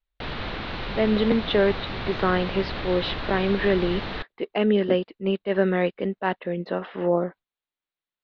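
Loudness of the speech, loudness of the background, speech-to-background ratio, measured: -25.0 LUFS, -32.5 LUFS, 7.5 dB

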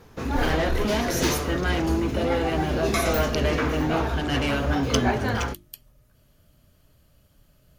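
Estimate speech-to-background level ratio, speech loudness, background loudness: -0.5 dB, -27.5 LUFS, -27.0 LUFS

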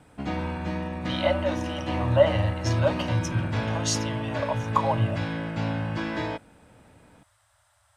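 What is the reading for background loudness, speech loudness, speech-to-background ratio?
-30.5 LUFS, -27.5 LUFS, 3.0 dB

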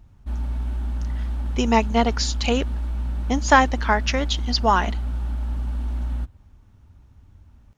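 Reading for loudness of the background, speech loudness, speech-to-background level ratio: -28.5 LUFS, -21.5 LUFS, 7.0 dB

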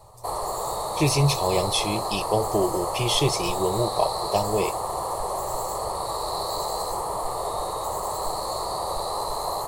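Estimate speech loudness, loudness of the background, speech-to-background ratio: -25.0 LUFS, -28.5 LUFS, 3.5 dB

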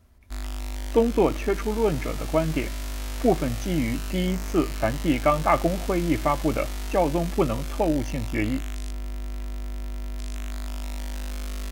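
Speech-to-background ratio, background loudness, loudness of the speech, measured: 9.0 dB, -34.5 LUFS, -25.5 LUFS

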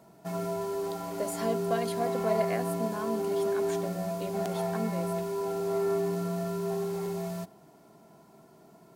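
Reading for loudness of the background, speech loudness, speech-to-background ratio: -32.0 LUFS, -36.0 LUFS, -4.0 dB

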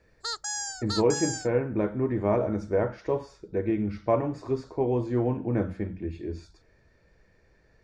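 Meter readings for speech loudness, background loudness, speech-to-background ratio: -28.5 LUFS, -32.5 LUFS, 4.0 dB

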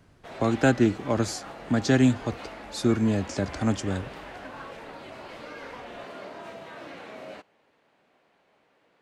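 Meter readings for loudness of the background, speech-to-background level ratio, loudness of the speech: -41.5 LUFS, 16.0 dB, -25.5 LUFS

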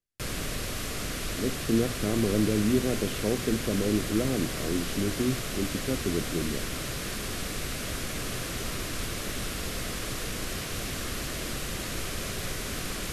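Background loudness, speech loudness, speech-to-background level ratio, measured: -33.0 LUFS, -29.5 LUFS, 3.5 dB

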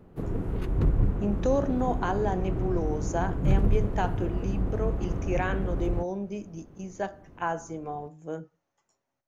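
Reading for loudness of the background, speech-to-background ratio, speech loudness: -30.5 LUFS, -2.0 dB, -32.5 LUFS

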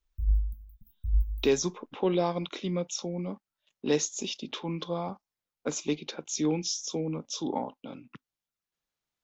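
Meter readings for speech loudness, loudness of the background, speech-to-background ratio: -31.5 LUFS, -32.0 LUFS, 0.5 dB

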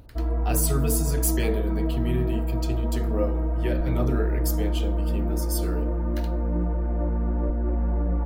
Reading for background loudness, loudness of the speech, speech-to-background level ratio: -27.0 LUFS, -30.5 LUFS, -3.5 dB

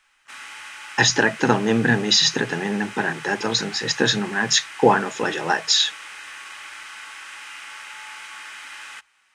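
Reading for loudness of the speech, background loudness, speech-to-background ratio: -20.0 LUFS, -36.5 LUFS, 16.5 dB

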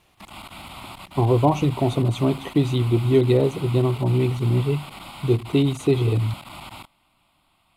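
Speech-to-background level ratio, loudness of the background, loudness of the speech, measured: 17.5 dB, -39.0 LUFS, -21.5 LUFS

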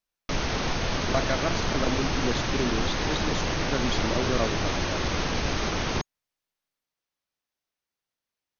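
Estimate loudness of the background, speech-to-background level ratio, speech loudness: -28.0 LUFS, -3.5 dB, -31.5 LUFS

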